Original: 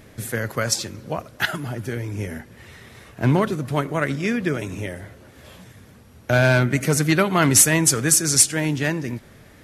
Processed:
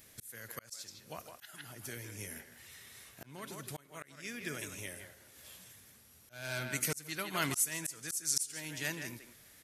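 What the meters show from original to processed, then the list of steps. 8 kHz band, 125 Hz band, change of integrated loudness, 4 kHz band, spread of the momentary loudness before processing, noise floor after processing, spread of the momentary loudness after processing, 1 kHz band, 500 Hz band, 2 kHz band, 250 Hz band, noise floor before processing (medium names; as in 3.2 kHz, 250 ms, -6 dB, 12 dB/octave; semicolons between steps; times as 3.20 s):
-17.0 dB, -24.5 dB, -18.5 dB, -15.5 dB, 17 LU, -61 dBFS, 20 LU, -18.5 dB, -22.5 dB, -17.0 dB, -23.5 dB, -48 dBFS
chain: pre-emphasis filter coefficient 0.9; speakerphone echo 160 ms, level -8 dB; slow attack 531 ms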